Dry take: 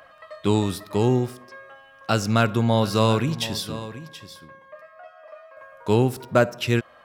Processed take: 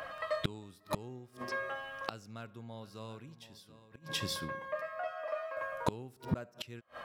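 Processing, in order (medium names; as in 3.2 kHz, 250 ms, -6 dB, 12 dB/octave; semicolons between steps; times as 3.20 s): inverted gate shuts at -25 dBFS, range -33 dB; trim +6 dB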